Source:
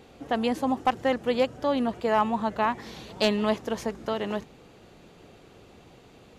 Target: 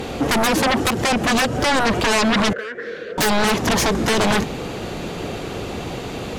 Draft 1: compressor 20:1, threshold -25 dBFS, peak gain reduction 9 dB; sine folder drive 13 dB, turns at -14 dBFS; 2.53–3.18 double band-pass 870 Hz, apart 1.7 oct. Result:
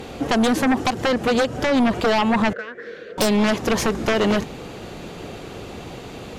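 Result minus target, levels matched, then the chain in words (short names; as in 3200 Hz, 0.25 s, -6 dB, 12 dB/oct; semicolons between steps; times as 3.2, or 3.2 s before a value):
sine folder: distortion -13 dB
compressor 20:1, threshold -25 dBFS, peak gain reduction 9 dB; sine folder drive 20 dB, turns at -14 dBFS; 2.53–3.18 double band-pass 870 Hz, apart 1.7 oct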